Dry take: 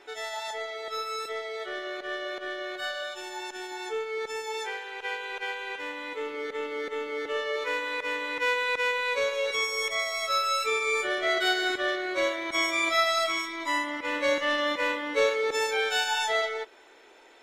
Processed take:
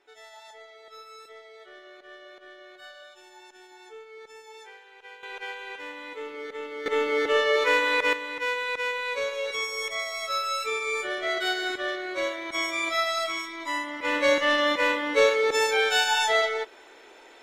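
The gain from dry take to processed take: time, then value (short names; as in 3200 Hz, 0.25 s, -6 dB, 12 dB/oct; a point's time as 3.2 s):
-13 dB
from 5.23 s -3 dB
from 6.86 s +8 dB
from 8.13 s -2 dB
from 14.01 s +4 dB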